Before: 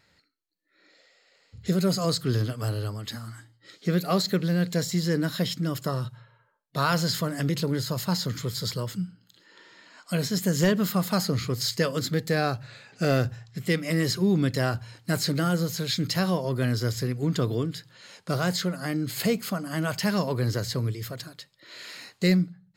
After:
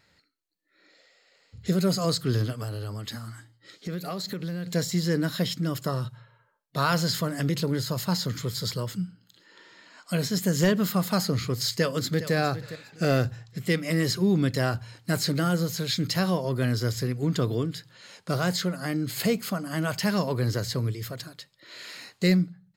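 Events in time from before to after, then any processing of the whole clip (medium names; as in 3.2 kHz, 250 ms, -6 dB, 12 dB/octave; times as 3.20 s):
2.57–4.67 s: compression, threshold -29 dBFS
11.71–12.34 s: echo throw 410 ms, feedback 25%, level -13 dB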